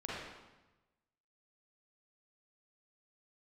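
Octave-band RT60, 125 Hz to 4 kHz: 1.4, 1.2, 1.1, 1.1, 1.0, 0.90 s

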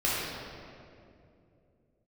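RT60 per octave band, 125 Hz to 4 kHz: 3.8, 3.5, 3.0, 2.2, 1.9, 1.5 s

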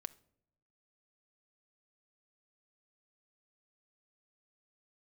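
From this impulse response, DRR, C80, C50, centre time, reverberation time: 13.0 dB, 24.0 dB, 20.0 dB, 2 ms, not exponential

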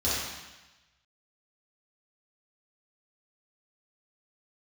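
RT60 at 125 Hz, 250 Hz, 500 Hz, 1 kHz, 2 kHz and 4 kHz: 1.2, 1.1, 1.0, 1.1, 1.2, 1.2 s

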